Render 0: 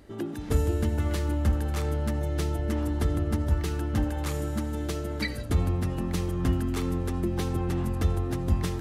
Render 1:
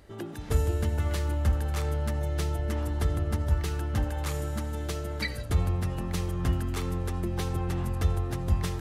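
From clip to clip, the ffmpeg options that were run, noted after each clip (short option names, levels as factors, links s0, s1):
-af "equalizer=f=270:w=1.7:g=-8.5"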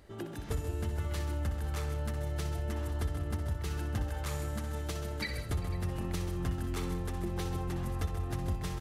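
-af "acompressor=threshold=0.0447:ratio=6,aecho=1:1:62|133|190|397|500:0.316|0.282|0.106|0.106|0.126,volume=0.708"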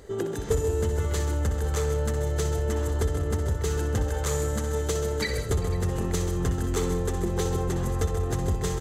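-filter_complex "[0:a]superequalizer=7b=3.16:12b=0.631:15b=2.51,asplit=2[s0][s1];[s1]asoftclip=type=hard:threshold=0.0316,volume=0.447[s2];[s0][s2]amix=inputs=2:normalize=0,volume=1.68"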